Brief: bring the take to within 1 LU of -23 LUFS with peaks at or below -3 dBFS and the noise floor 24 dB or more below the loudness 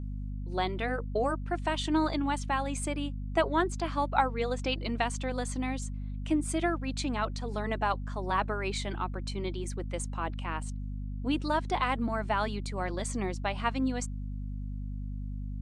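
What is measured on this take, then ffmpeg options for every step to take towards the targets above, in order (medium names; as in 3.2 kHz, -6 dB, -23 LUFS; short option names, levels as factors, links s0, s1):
hum 50 Hz; highest harmonic 250 Hz; hum level -34 dBFS; loudness -32.0 LUFS; peak level -11.0 dBFS; loudness target -23.0 LUFS
-> -af "bandreject=f=50:t=h:w=4,bandreject=f=100:t=h:w=4,bandreject=f=150:t=h:w=4,bandreject=f=200:t=h:w=4,bandreject=f=250:t=h:w=4"
-af "volume=2.82,alimiter=limit=0.708:level=0:latency=1"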